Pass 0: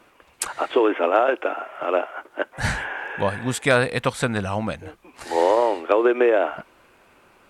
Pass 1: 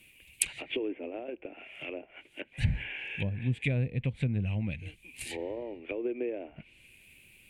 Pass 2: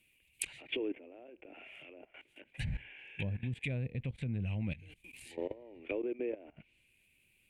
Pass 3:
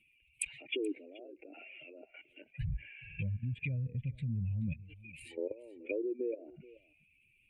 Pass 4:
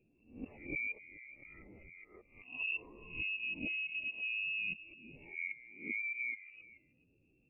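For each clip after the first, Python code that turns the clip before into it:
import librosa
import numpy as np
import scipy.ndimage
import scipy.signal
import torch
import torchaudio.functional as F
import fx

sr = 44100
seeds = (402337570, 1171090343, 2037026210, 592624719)

y1 = fx.env_lowpass_down(x, sr, base_hz=710.0, full_db=-19.0)
y1 = fx.curve_eq(y1, sr, hz=(130.0, 1300.0, 2400.0, 5500.0, 9500.0), db=(0, -30, 7, -8, 8))
y2 = fx.level_steps(y1, sr, step_db=18)
y2 = y2 * librosa.db_to_amplitude(1.0)
y3 = fx.spec_expand(y2, sr, power=1.9)
y3 = y3 + 10.0 ** (-20.5 / 20.0) * np.pad(y3, (int(429 * sr / 1000.0), 0))[:len(y3)]
y3 = y3 * librosa.db_to_amplitude(1.0)
y4 = fx.spec_swells(y3, sr, rise_s=0.4)
y4 = fx.freq_invert(y4, sr, carrier_hz=2700)
y4 = fx.attack_slew(y4, sr, db_per_s=200.0)
y4 = y4 * librosa.db_to_amplitude(-4.0)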